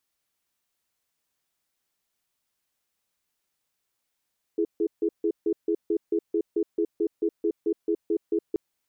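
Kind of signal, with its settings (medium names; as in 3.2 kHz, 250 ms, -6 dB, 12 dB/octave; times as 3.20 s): cadence 333 Hz, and 419 Hz, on 0.07 s, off 0.15 s, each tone -24 dBFS 3.98 s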